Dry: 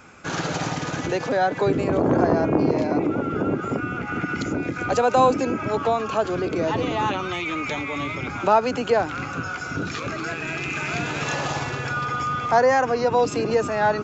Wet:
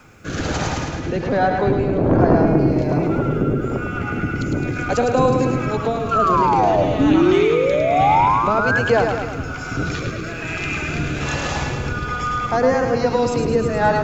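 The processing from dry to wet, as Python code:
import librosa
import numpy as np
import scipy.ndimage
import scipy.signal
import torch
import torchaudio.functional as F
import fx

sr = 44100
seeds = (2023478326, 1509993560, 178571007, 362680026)

y = fx.octave_divider(x, sr, octaves=1, level_db=0.0)
y = fx.spec_paint(y, sr, seeds[0], shape='rise', start_s=6.99, length_s=1.8, low_hz=270.0, high_hz=1700.0, level_db=-18.0)
y = fx.rotary(y, sr, hz=1.2)
y = fx.quant_dither(y, sr, seeds[1], bits=12, dither='triangular')
y = fx.air_absorb(y, sr, metres=130.0, at=(0.85, 2.47))
y = fx.spec_paint(y, sr, seeds[2], shape='fall', start_s=6.11, length_s=0.73, low_hz=570.0, high_hz=1400.0, level_db=-21.0)
y = fx.echo_feedback(y, sr, ms=106, feedback_pct=55, wet_db=-5.5)
y = F.gain(torch.from_numpy(y), 3.0).numpy()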